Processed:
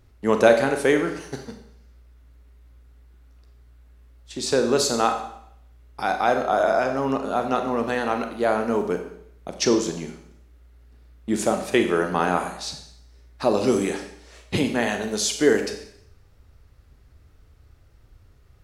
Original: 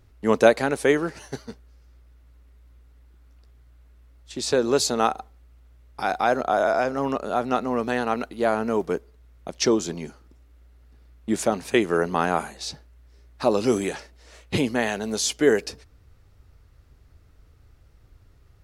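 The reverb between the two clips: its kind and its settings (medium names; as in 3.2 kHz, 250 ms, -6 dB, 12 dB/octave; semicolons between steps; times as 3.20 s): Schroeder reverb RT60 0.7 s, combs from 30 ms, DRR 5.5 dB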